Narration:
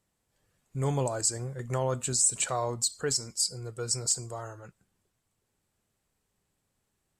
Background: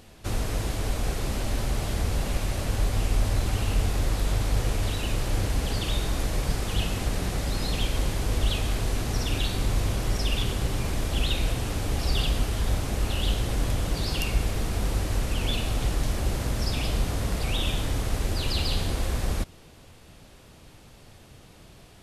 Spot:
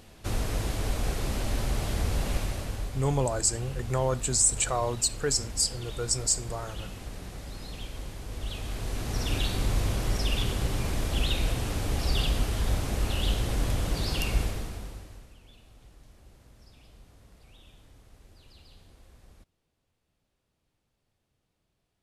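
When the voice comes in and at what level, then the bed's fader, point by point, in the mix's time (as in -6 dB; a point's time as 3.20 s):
2.20 s, +2.0 dB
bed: 2.37 s -1.5 dB
3.04 s -12.5 dB
8.27 s -12.5 dB
9.32 s -1.5 dB
14.41 s -1.5 dB
15.42 s -28 dB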